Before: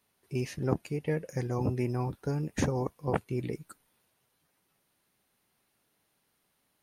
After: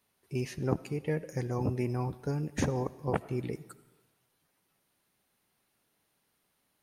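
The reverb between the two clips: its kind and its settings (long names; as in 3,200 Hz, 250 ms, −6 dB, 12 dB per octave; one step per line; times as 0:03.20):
comb and all-pass reverb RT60 1.1 s, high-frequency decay 0.95×, pre-delay 40 ms, DRR 17.5 dB
level −1 dB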